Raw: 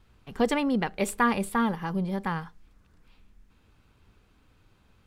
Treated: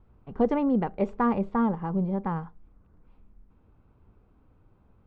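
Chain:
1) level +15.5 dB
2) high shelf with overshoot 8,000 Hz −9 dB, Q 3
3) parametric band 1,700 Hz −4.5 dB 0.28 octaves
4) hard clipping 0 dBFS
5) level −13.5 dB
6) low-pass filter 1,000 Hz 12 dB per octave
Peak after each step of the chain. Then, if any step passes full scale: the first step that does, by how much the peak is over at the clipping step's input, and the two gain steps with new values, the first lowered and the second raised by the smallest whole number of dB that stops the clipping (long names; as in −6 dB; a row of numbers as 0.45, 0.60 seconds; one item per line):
+4.0, +4.0, +3.5, 0.0, −13.5, −13.0 dBFS
step 1, 3.5 dB
step 1 +11.5 dB, step 5 −9.5 dB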